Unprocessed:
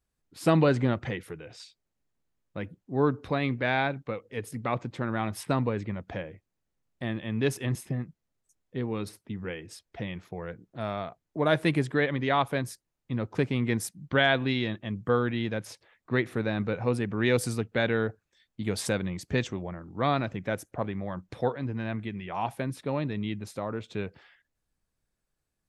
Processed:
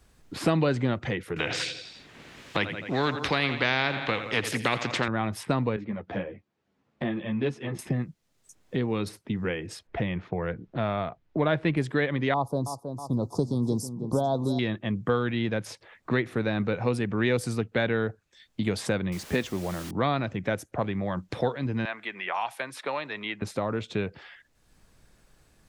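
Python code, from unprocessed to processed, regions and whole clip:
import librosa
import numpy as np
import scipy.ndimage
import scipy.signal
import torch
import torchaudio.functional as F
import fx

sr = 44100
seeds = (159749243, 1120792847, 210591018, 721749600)

y = fx.chain(x, sr, fx.weighting(curve='D'),
    fx.echo_feedback(ms=85, feedback_pct=51, wet_db=-18),
    fx.spectral_comp(ratio=2.0), at=(1.36, 5.08))
y = fx.chain(y, sr, fx.highpass(hz=140.0, slope=12),
    fx.spacing_loss(db_at_10k=25),
    fx.ensemble(), at=(5.76, 7.79))
y = fx.chain(y, sr, fx.lowpass(hz=3000.0, slope=12),
    fx.low_shelf(hz=64.0, db=10.5), at=(9.87, 11.77))
y = fx.chain(y, sr, fx.ellip_bandstop(low_hz=990.0, high_hz=4800.0, order=3, stop_db=50),
    fx.echo_feedback(ms=320, feedback_pct=30, wet_db=-13.5), at=(12.34, 14.59))
y = fx.chain(y, sr, fx.peak_eq(hz=120.0, db=-10.5, octaves=0.34),
    fx.quant_dither(seeds[0], bits=8, dither='triangular'), at=(19.12, 19.91))
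y = fx.chain(y, sr, fx.highpass(hz=880.0, slope=12),
    fx.band_squash(depth_pct=40), at=(21.85, 23.42))
y = fx.high_shelf(y, sr, hz=11000.0, db=-10.0)
y = fx.band_squash(y, sr, depth_pct=70)
y = y * 10.0 ** (1.5 / 20.0)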